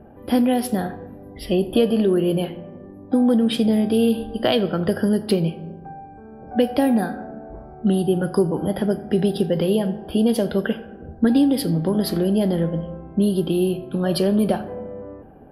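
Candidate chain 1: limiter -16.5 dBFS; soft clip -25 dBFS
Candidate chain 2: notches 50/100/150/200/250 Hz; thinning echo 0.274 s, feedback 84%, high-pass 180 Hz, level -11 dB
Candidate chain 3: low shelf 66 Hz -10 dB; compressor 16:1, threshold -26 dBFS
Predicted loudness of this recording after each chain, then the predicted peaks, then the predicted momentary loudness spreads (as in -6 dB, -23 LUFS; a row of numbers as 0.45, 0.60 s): -30.5, -21.5, -32.0 LUFS; -25.0, -6.0, -15.5 dBFS; 9, 12, 9 LU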